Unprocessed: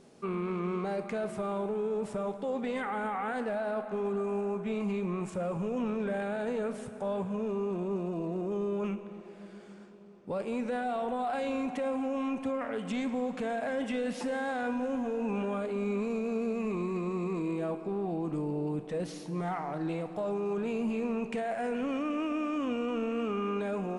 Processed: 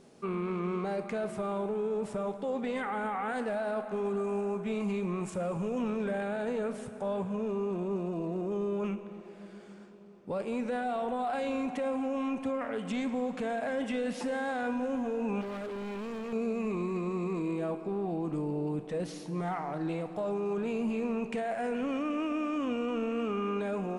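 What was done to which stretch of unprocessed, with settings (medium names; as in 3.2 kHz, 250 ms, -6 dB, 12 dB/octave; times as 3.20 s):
3.29–6.11 s: treble shelf 5.4 kHz +6 dB
15.41–16.33 s: hard clipper -36 dBFS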